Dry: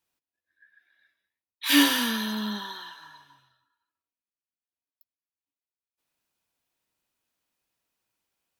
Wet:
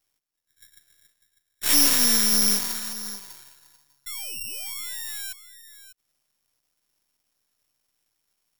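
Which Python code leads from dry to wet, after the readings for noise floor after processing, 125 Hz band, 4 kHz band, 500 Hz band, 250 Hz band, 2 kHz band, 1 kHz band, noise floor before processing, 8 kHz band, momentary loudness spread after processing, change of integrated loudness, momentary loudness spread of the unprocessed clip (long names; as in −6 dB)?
−78 dBFS, can't be measured, +2.0 dB, +1.0 dB, −6.0 dB, −3.5 dB, −3.5 dB, below −85 dBFS, +13.5 dB, 18 LU, +3.0 dB, 20 LU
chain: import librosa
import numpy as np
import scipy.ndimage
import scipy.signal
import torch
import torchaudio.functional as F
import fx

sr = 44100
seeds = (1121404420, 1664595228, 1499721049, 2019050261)

y = fx.low_shelf(x, sr, hz=260.0, db=8.5)
y = np.clip(y, -10.0 ** (-21.5 / 20.0), 10.0 ** (-21.5 / 20.0))
y = fx.spec_paint(y, sr, seeds[0], shape='fall', start_s=4.06, length_s=1.27, low_hz=1500.0, high_hz=3500.0, level_db=-40.0)
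y = y + 10.0 ** (-14.0 / 20.0) * np.pad(y, (int(598 * sr / 1000.0), 0))[:len(y)]
y = np.maximum(y, 0.0)
y = (np.kron(y[::8], np.eye(8)[0]) * 8)[:len(y)]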